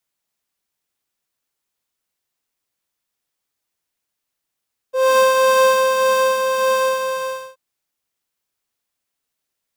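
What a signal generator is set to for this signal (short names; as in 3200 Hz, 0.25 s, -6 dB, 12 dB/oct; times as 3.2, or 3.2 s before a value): synth patch with tremolo C6, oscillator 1 triangle, interval -12 st, sub -1.5 dB, noise -18.5 dB, filter highpass, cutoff 130 Hz, Q 8.7, filter envelope 2 oct, filter sustain 35%, attack 0.255 s, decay 1.20 s, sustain -5 dB, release 0.69 s, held 1.94 s, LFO 1.8 Hz, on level 3 dB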